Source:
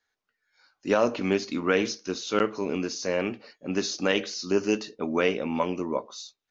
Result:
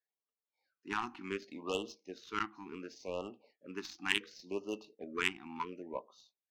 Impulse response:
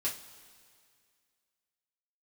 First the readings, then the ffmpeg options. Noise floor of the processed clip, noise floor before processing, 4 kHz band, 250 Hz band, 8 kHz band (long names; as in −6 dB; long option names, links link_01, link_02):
below −85 dBFS, −83 dBFS, −8.0 dB, −16.0 dB, can't be measured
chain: -af "aderivative,adynamicsmooth=sensitivity=2.5:basefreq=740,afftfilt=real='re*(1-between(b*sr/1024,490*pow(1900/490,0.5+0.5*sin(2*PI*0.69*pts/sr))/1.41,490*pow(1900/490,0.5+0.5*sin(2*PI*0.69*pts/sr))*1.41))':imag='im*(1-between(b*sr/1024,490*pow(1900/490,0.5+0.5*sin(2*PI*0.69*pts/sr))/1.41,490*pow(1900/490,0.5+0.5*sin(2*PI*0.69*pts/sr))*1.41))':win_size=1024:overlap=0.75,volume=12dB"